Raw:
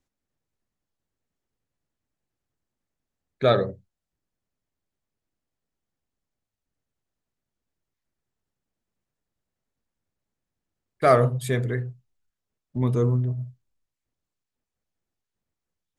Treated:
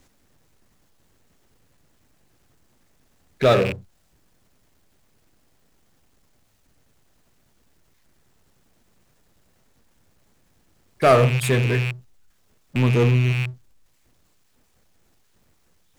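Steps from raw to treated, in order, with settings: rattle on loud lows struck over -35 dBFS, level -23 dBFS; power-law waveshaper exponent 0.7

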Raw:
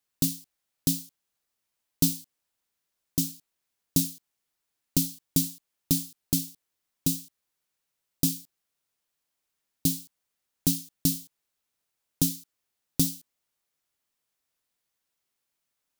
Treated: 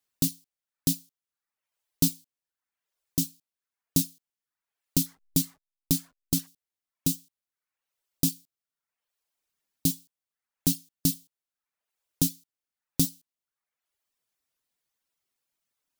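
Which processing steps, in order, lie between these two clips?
5.06–6.47 s: hysteresis with a dead band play -39 dBFS; reverb removal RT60 0.81 s

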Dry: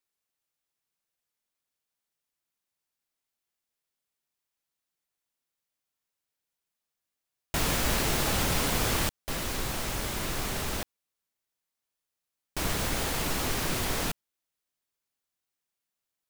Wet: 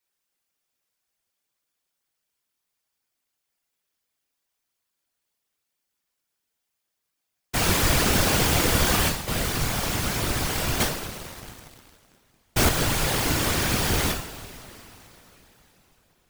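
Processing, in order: two-slope reverb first 0.53 s, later 4.1 s, from -18 dB, DRR -1 dB; whisper effect; 10.80–12.69 s: waveshaping leveller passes 2; trim +2.5 dB

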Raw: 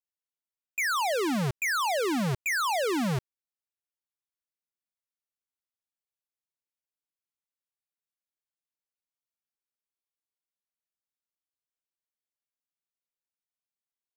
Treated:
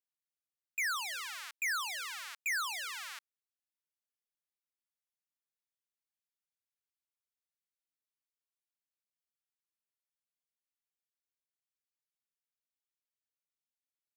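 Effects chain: high-pass 1.3 kHz 24 dB/octave; trim -5 dB

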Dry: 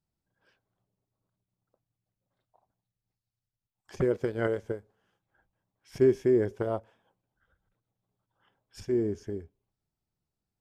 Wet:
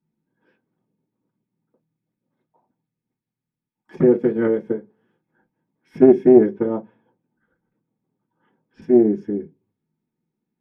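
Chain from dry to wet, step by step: 6.49–8.82 s: distance through air 150 m; reverberation RT60 0.15 s, pre-delay 3 ms, DRR -4.5 dB; loudspeaker Doppler distortion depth 0.17 ms; trim -10 dB

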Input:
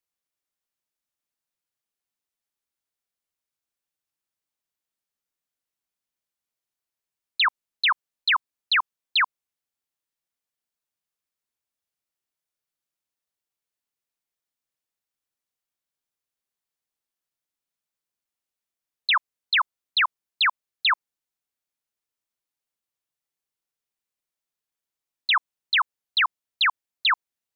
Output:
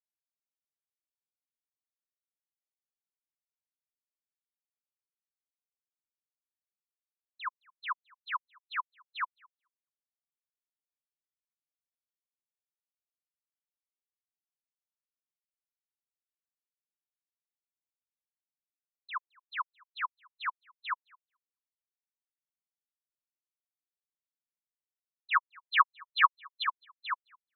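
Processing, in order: 25.31–26.64 s: comb 6.3 ms, depth 72%; feedback delay 216 ms, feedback 51%, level -7 dB; spectral contrast expander 4:1

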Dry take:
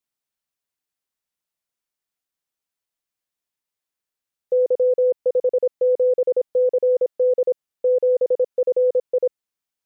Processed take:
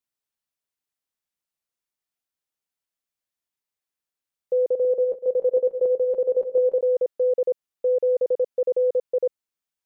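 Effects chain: 4.56–6.81 s: backward echo that repeats 144 ms, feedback 72%, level -12 dB; trim -3 dB

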